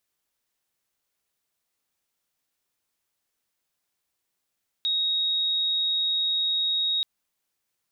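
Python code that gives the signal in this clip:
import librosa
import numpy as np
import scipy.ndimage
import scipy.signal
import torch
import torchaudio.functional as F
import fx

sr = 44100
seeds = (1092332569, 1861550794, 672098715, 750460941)

y = 10.0 ** (-22.0 / 20.0) * np.sin(2.0 * np.pi * (3770.0 * (np.arange(round(2.18 * sr)) / sr)))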